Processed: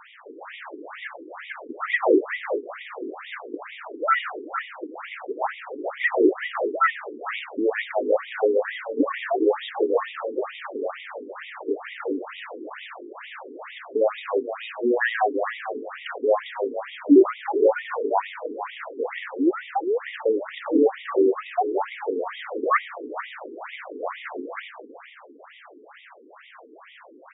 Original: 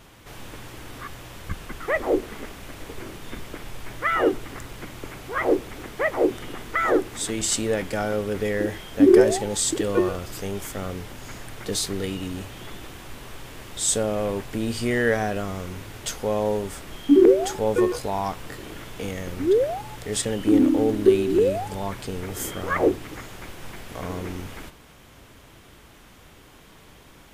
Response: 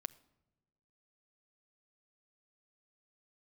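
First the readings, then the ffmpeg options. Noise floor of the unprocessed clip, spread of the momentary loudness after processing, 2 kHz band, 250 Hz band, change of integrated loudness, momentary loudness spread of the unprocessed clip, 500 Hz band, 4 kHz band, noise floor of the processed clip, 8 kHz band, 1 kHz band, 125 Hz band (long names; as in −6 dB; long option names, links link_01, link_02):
−50 dBFS, 16 LU, +2.5 dB, −3.0 dB, −1.5 dB, 20 LU, −0.5 dB, −5.5 dB, −49 dBFS, below −40 dB, +3.5 dB, below −30 dB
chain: -filter_complex "[0:a]asplit=2[link_01][link_02];[link_02]highpass=frequency=720:poles=1,volume=21dB,asoftclip=type=tanh:threshold=-4dB[link_03];[link_01][link_03]amix=inputs=2:normalize=0,lowpass=frequency=1300:poles=1,volume=-6dB,asplit=4[link_04][link_05][link_06][link_07];[link_05]adelay=400,afreqshift=36,volume=-10dB[link_08];[link_06]adelay=800,afreqshift=72,volume=-20.2dB[link_09];[link_07]adelay=1200,afreqshift=108,volume=-30.3dB[link_10];[link_04][link_08][link_09][link_10]amix=inputs=4:normalize=0,afftfilt=real='re*between(b*sr/1024,320*pow(2700/320,0.5+0.5*sin(2*PI*2.2*pts/sr))/1.41,320*pow(2700/320,0.5+0.5*sin(2*PI*2.2*pts/sr))*1.41)':imag='im*between(b*sr/1024,320*pow(2700/320,0.5+0.5*sin(2*PI*2.2*pts/sr))/1.41,320*pow(2700/320,0.5+0.5*sin(2*PI*2.2*pts/sr))*1.41)':win_size=1024:overlap=0.75"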